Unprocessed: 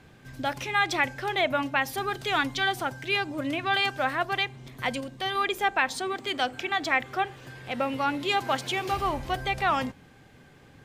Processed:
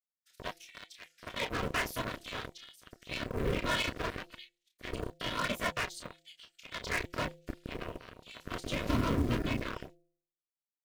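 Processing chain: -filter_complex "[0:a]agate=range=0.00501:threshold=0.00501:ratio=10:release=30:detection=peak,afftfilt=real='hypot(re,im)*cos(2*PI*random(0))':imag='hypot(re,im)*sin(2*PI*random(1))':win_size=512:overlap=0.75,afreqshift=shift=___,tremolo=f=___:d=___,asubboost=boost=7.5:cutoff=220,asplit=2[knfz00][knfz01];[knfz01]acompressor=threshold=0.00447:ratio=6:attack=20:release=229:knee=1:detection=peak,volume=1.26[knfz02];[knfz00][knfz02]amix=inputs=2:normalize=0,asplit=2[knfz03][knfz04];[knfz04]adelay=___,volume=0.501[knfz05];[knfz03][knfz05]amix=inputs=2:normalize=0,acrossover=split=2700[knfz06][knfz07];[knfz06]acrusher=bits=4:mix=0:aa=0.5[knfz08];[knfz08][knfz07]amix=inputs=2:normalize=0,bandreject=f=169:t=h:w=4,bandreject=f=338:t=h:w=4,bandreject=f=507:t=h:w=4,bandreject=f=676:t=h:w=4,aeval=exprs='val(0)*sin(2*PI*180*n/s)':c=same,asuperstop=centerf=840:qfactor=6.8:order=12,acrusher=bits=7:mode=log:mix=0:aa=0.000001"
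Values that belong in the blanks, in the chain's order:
16, 0.55, 0.84, 30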